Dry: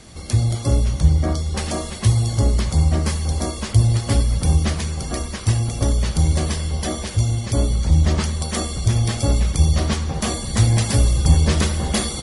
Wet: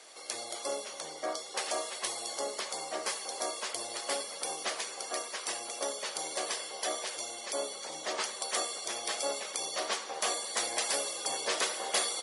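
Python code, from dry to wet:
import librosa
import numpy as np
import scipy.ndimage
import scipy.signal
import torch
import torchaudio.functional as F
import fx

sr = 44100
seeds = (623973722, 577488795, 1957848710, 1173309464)

y = scipy.signal.sosfilt(scipy.signal.butter(4, 470.0, 'highpass', fs=sr, output='sos'), x)
y = y * 10.0 ** (-5.5 / 20.0)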